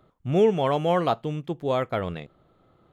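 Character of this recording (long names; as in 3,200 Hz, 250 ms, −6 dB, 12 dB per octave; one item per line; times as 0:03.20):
background noise floor −63 dBFS
spectral slope −6.0 dB per octave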